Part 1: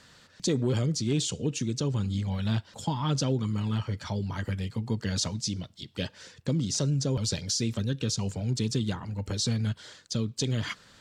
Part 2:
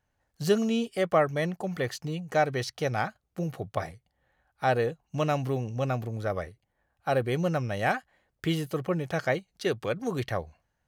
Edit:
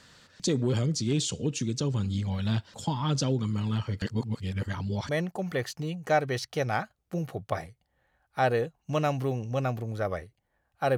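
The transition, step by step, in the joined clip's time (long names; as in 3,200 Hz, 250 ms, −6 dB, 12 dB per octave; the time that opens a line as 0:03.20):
part 1
0:04.02–0:05.09: reverse
0:05.09: continue with part 2 from 0:01.34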